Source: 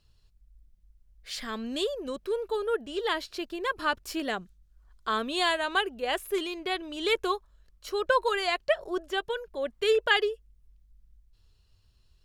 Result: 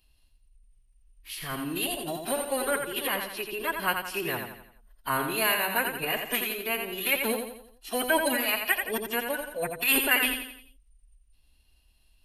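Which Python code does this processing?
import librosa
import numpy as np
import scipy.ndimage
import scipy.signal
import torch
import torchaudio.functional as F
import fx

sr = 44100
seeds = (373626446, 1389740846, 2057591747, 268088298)

y = (np.kron(scipy.signal.resample_poly(x, 1, 3), np.eye(3)[0]) * 3)[:len(x)]
y = fx.peak_eq(y, sr, hz=2700.0, db=10.0, octaves=0.49)
y = fx.pitch_keep_formants(y, sr, semitones=-8.5)
y = fx.dynamic_eq(y, sr, hz=5000.0, q=0.89, threshold_db=-37.0, ratio=4.0, max_db=-5)
y = fx.echo_feedback(y, sr, ms=86, feedback_pct=45, wet_db=-6.0)
y = y * 10.0 ** (-4.0 / 20.0)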